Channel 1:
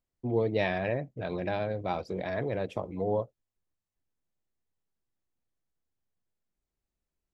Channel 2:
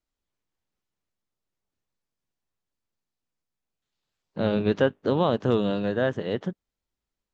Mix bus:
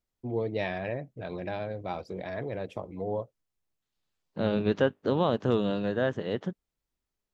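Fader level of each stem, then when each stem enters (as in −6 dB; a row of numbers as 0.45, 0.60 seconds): −3.0, −3.0 decibels; 0.00, 0.00 seconds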